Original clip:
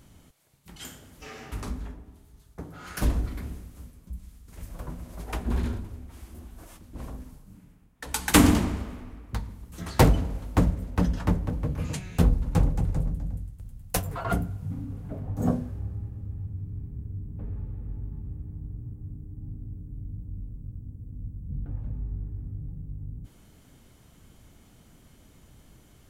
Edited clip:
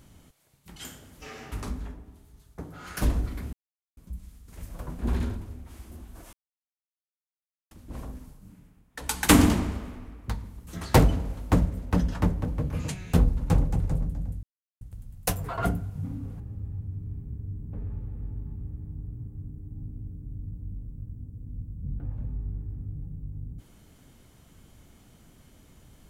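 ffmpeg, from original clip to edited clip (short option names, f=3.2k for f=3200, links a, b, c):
-filter_complex "[0:a]asplit=7[a][b][c][d][e][f][g];[a]atrim=end=3.53,asetpts=PTS-STARTPTS,afade=t=out:st=3.526:d=0.004:c=hsin[h];[b]atrim=start=3.53:end=3.97,asetpts=PTS-STARTPTS,volume=0[i];[c]atrim=start=3.97:end=4.992,asetpts=PTS-STARTPTS,afade=t=in:d=0.004:c=hsin[j];[d]atrim=start=5.418:end=6.76,asetpts=PTS-STARTPTS,afade=t=out:st=1.338:d=0.004:c=hsin,apad=pad_dur=1.38[k];[e]atrim=start=6.76:end=13.48,asetpts=PTS-STARTPTS,afade=t=in:d=0.004:c=hsin,afade=t=out:st=6.716:d=0.004:c=hsin,apad=pad_dur=0.38[l];[f]atrim=start=13.48:end=15.072,asetpts=PTS-STARTPTS,afade=t=in:d=0.004:c=hsin[m];[g]atrim=start=16.058[n];[h][i][j]concat=n=3:v=0:a=1[o];[k][l][m]concat=n=3:v=0:a=1[p];[o][p]acrossfade=d=0.004:c1=hsin:c2=hsin[q];[q][n]acrossfade=d=0.004:c1=hsin:c2=hsin"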